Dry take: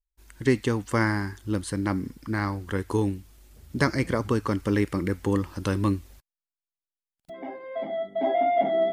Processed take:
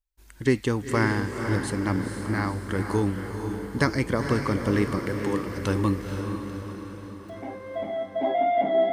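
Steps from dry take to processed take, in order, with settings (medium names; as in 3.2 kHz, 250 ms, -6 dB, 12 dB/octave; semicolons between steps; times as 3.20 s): 4.98–5.47 s: high-pass 370 Hz; echo that smears into a reverb 484 ms, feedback 55%, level -6 dB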